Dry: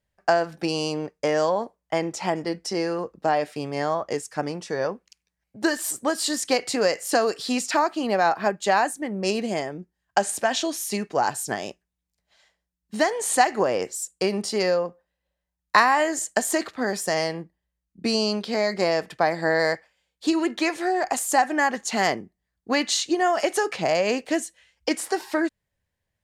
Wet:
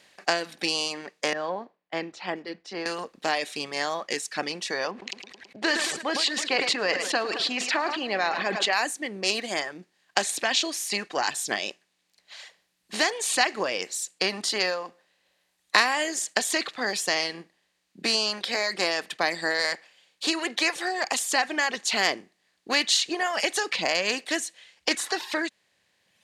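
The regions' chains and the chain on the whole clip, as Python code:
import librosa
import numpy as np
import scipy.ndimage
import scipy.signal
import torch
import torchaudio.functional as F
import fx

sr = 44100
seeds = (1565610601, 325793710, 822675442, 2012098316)

y = fx.chain(x, sr, fx.spacing_loss(db_at_10k=43),
    fx.band_widen(depth_pct=100), at=(1.33, 2.86))
y = fx.chain(y, sr, fx.lowpass(hz=3000.0, slope=12),
    fx.echo_feedback(ms=108, feedback_pct=50, wet_db=-14),
    fx.sustainer(db_per_s=42.0), at=(4.91, 8.73))
y = fx.bin_compress(y, sr, power=0.6)
y = fx.dereverb_blind(y, sr, rt60_s=1.6)
y = fx.weighting(y, sr, curve='D')
y = y * librosa.db_to_amplitude(-9.0)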